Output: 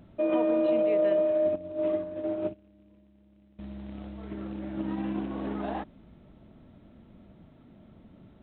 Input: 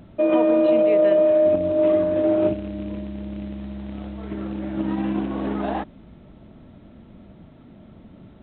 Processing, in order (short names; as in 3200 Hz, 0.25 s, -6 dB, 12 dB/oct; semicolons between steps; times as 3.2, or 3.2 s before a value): 1.21–3.59 upward expander 2.5:1, over -29 dBFS; gain -7.5 dB